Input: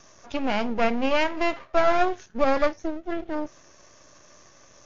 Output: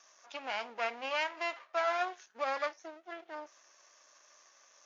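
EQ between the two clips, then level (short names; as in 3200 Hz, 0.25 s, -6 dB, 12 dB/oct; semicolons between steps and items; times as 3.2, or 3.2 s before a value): HPF 810 Hz 12 dB/oct; -7.0 dB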